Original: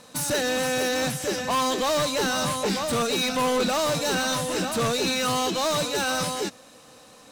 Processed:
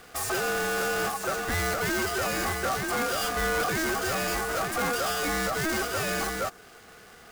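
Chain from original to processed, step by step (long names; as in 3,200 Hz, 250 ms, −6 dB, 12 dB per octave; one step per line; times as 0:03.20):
each half-wave held at its own peak
ring modulation 960 Hz
dynamic equaliser 3,200 Hz, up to −5 dB, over −42 dBFS, Q 1
level −2 dB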